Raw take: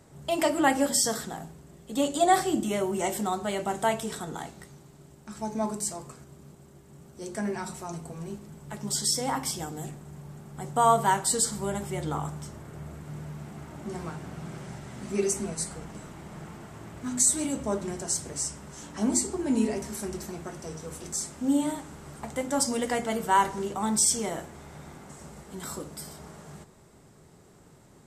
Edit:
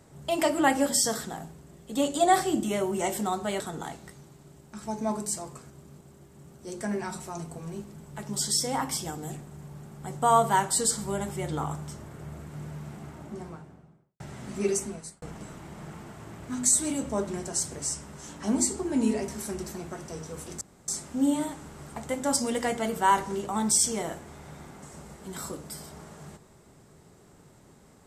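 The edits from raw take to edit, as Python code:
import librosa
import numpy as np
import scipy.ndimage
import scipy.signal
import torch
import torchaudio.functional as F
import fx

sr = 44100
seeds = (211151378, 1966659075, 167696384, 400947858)

y = fx.studio_fade_out(x, sr, start_s=13.45, length_s=1.29)
y = fx.edit(y, sr, fx.cut(start_s=3.6, length_s=0.54),
    fx.fade_out_span(start_s=15.25, length_s=0.51),
    fx.insert_room_tone(at_s=21.15, length_s=0.27), tone=tone)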